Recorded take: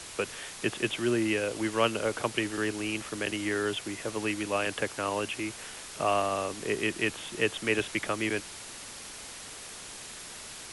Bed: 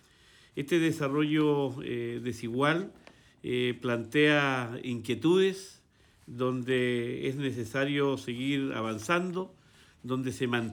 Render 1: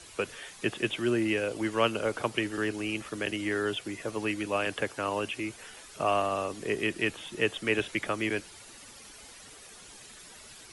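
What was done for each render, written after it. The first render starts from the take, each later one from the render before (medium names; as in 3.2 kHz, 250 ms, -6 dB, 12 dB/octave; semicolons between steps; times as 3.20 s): noise reduction 10 dB, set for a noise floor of -44 dBFS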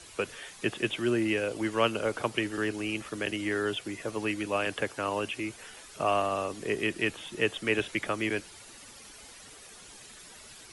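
no audible change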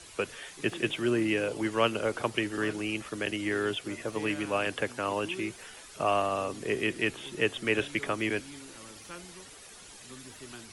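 add bed -18 dB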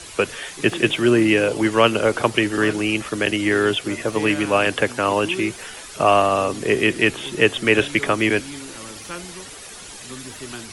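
trim +11.5 dB; peak limiter -2 dBFS, peak gain reduction 2 dB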